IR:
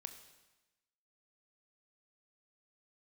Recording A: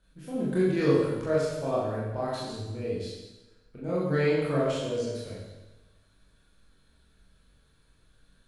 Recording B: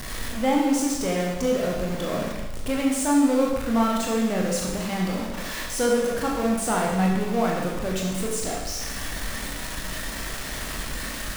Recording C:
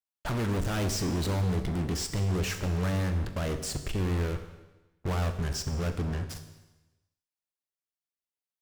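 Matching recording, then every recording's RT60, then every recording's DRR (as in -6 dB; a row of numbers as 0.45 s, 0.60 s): C; 1.1 s, 1.1 s, 1.1 s; -8.5 dB, -2.5 dB, 7.0 dB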